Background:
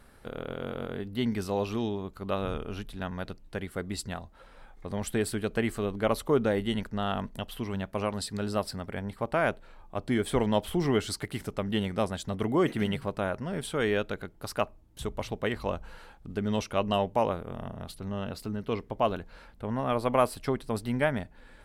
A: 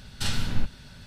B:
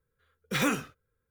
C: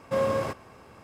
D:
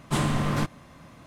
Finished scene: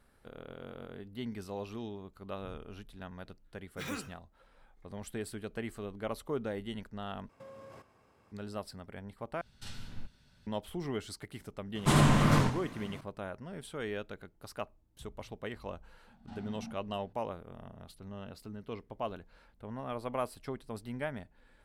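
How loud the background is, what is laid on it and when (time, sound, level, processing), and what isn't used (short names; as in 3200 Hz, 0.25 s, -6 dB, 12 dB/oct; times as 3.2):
background -10.5 dB
3.26 add B -13 dB
7.29 replace with C -15.5 dB + compressor 10:1, threshold -31 dBFS
9.41 replace with A -17.5 dB
11.75 add D -0.5 dB + warbling echo 87 ms, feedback 33%, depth 204 cents, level -4 dB
16.07 add A -3.5 dB + double band-pass 400 Hz, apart 1.7 oct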